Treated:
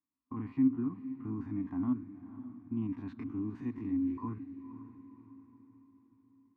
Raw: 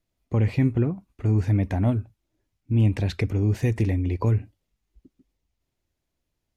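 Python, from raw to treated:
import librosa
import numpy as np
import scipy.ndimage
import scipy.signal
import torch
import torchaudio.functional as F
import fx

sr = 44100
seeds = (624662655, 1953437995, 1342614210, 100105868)

y = fx.spec_steps(x, sr, hold_ms=50)
y = fx.double_bandpass(y, sr, hz=540.0, octaves=2.0)
y = fx.echo_diffused(y, sr, ms=525, feedback_pct=46, wet_db=-13)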